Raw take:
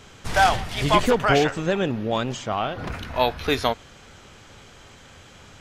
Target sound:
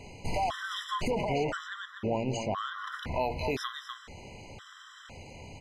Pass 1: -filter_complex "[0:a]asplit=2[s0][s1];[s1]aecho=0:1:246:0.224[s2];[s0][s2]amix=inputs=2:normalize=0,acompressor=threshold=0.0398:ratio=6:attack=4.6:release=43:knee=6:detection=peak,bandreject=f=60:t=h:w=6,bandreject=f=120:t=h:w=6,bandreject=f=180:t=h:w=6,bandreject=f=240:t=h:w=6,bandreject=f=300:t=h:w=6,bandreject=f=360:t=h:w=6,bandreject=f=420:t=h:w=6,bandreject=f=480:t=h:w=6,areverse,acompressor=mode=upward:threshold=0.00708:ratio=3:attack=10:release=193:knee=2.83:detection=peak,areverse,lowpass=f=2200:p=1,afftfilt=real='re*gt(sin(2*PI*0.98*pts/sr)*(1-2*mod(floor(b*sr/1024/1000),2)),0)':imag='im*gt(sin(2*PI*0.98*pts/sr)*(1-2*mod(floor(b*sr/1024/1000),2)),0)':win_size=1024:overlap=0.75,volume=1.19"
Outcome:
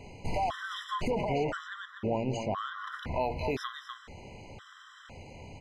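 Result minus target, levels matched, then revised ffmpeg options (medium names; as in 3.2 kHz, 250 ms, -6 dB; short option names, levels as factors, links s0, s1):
4 kHz band -3.0 dB
-filter_complex "[0:a]asplit=2[s0][s1];[s1]aecho=0:1:246:0.224[s2];[s0][s2]amix=inputs=2:normalize=0,acompressor=threshold=0.0398:ratio=6:attack=4.6:release=43:knee=6:detection=peak,bandreject=f=60:t=h:w=6,bandreject=f=120:t=h:w=6,bandreject=f=180:t=h:w=6,bandreject=f=240:t=h:w=6,bandreject=f=300:t=h:w=6,bandreject=f=360:t=h:w=6,bandreject=f=420:t=h:w=6,bandreject=f=480:t=h:w=6,areverse,acompressor=mode=upward:threshold=0.00708:ratio=3:attack=10:release=193:knee=2.83:detection=peak,areverse,lowpass=f=4900:p=1,afftfilt=real='re*gt(sin(2*PI*0.98*pts/sr)*(1-2*mod(floor(b*sr/1024/1000),2)),0)':imag='im*gt(sin(2*PI*0.98*pts/sr)*(1-2*mod(floor(b*sr/1024/1000),2)),0)':win_size=1024:overlap=0.75,volume=1.19"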